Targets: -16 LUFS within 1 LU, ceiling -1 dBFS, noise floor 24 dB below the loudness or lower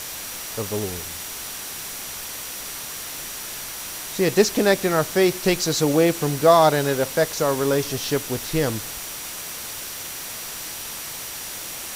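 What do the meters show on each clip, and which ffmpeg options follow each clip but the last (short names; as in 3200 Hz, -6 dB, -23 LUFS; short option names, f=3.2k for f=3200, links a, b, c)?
steady tone 5800 Hz; tone level -42 dBFS; noise floor -34 dBFS; noise floor target -48 dBFS; loudness -23.5 LUFS; peak -3.0 dBFS; loudness target -16.0 LUFS
-> -af "bandreject=f=5.8k:w=30"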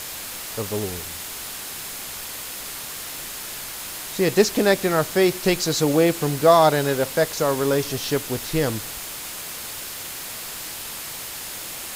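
steady tone none; noise floor -34 dBFS; noise floor target -48 dBFS
-> -af "afftdn=nr=14:nf=-34"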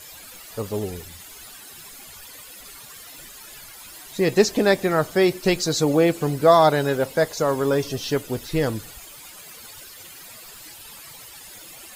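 noise floor -43 dBFS; noise floor target -45 dBFS
-> -af "afftdn=nr=6:nf=-43"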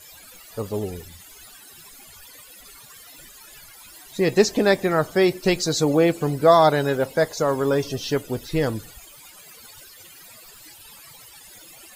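noise floor -46 dBFS; loudness -21.0 LUFS; peak -3.0 dBFS; loudness target -16.0 LUFS
-> -af "volume=5dB,alimiter=limit=-1dB:level=0:latency=1"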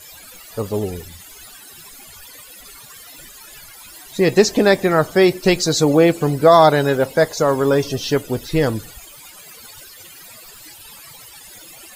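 loudness -16.5 LUFS; peak -1.0 dBFS; noise floor -41 dBFS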